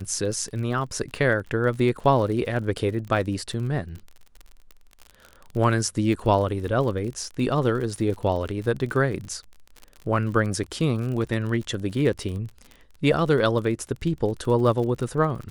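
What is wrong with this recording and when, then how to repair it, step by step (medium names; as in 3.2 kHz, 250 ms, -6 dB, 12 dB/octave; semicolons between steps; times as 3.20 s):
crackle 40 per s -32 dBFS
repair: de-click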